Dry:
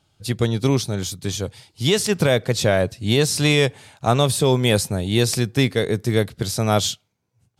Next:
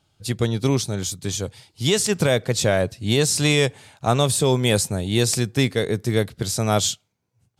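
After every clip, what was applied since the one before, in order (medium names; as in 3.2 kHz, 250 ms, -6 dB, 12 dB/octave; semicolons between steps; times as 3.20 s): dynamic bell 7.5 kHz, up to +6 dB, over -42 dBFS, Q 2; trim -1.5 dB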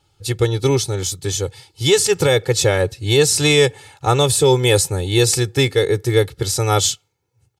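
comb 2.3 ms, depth 89%; trim +2 dB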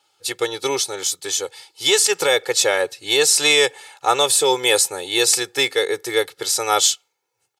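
high-pass 590 Hz 12 dB/octave; trim +2 dB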